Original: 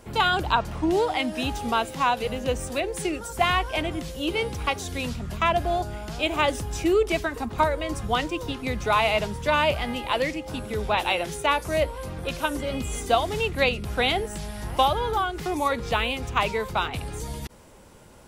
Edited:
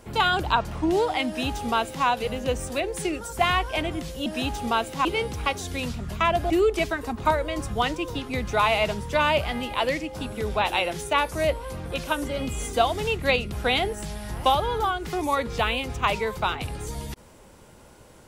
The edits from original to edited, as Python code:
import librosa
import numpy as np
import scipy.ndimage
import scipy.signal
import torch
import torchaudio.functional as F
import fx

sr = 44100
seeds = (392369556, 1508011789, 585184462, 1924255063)

y = fx.edit(x, sr, fx.duplicate(start_s=1.27, length_s=0.79, to_s=4.26),
    fx.cut(start_s=5.71, length_s=1.12), tone=tone)